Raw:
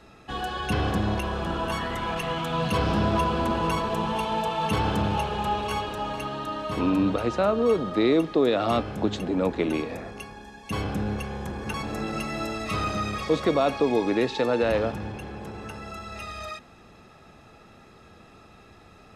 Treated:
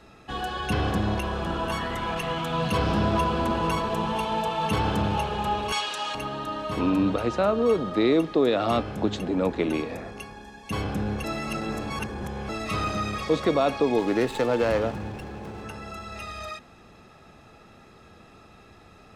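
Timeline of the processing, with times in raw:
5.72–6.15 s: frequency weighting ITU-R 468
11.24–12.49 s: reverse
13.98–15.62 s: sliding maximum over 5 samples

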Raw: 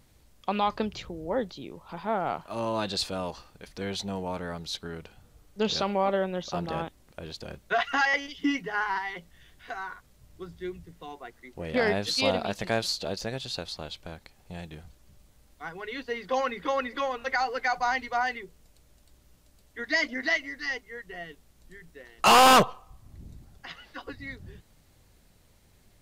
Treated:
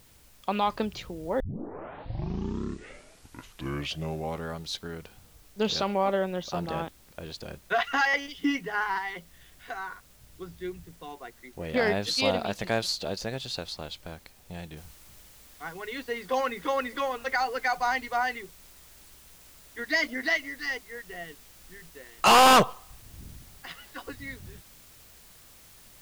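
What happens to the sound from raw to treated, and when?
1.40 s: tape start 3.26 s
14.77 s: noise floor step -60 dB -54 dB

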